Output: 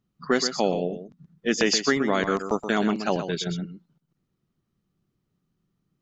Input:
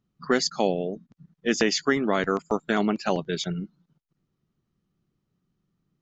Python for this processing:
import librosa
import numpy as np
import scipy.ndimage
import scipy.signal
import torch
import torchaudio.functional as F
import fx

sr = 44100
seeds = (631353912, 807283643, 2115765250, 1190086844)

y = fx.high_shelf(x, sr, hz=5200.0, db=7.0, at=(1.6, 2.99))
y = y + 10.0 ** (-9.5 / 20.0) * np.pad(y, (int(125 * sr / 1000.0), 0))[:len(y)]